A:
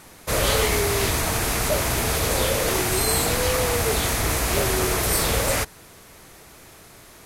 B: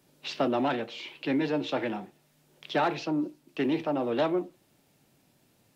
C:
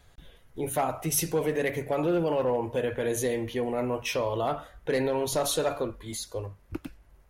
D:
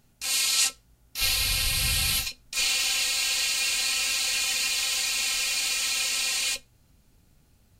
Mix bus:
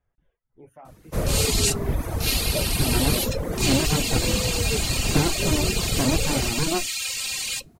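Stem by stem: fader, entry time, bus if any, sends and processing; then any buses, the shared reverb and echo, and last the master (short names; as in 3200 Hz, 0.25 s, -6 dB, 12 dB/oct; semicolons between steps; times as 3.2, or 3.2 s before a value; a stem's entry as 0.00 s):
-8.0 dB, 0.85 s, no send, octaver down 1 oct, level +3 dB; tilt shelf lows +7 dB, about 1100 Hz
+1.5 dB, 2.40 s, no send, AGC gain up to 7 dB; running maximum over 65 samples
-14.5 dB, 0.00 s, no send, running mean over 11 samples; noise-modulated level, depth 50%
-0.5 dB, 1.05 s, no send, dry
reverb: off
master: reverb removal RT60 0.8 s; high shelf 8800 Hz +4.5 dB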